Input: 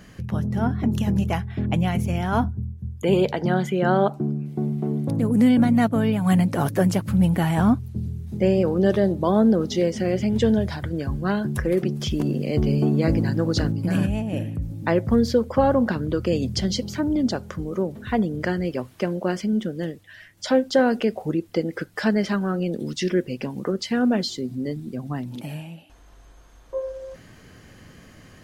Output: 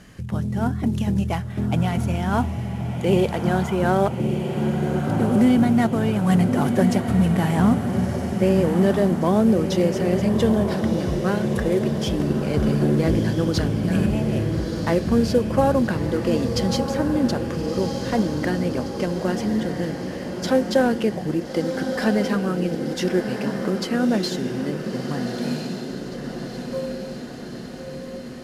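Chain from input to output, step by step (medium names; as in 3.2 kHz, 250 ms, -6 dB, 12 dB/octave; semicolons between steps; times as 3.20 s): CVSD coder 64 kbps; echo that smears into a reverb 1320 ms, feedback 60%, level -6 dB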